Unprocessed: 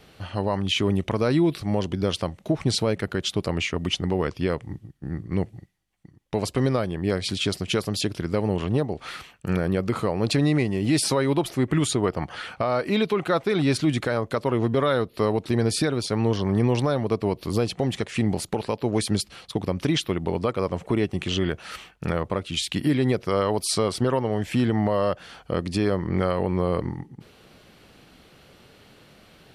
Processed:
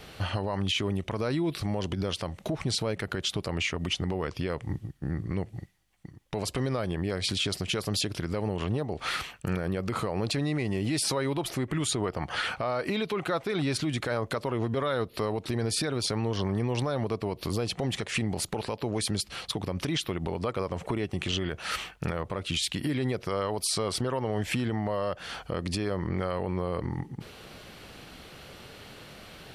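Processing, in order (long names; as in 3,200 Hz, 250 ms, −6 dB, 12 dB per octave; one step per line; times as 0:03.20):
downward compressor 4 to 1, threshold −29 dBFS, peak gain reduction 11 dB
brickwall limiter −25 dBFS, peak gain reduction 8.5 dB
parametric band 240 Hz −3.5 dB 2 octaves
level +6.5 dB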